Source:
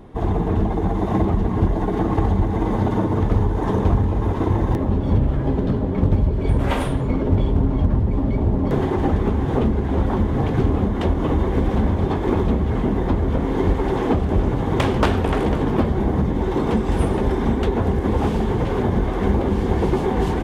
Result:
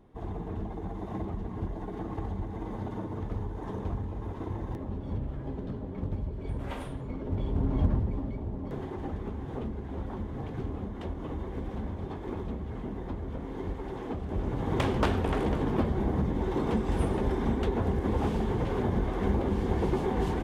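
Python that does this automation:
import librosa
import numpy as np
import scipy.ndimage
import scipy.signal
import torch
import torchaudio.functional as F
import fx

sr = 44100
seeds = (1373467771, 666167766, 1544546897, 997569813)

y = fx.gain(x, sr, db=fx.line((7.19, -16.0), (7.84, -6.5), (8.41, -16.5), (14.14, -16.5), (14.7, -8.5)))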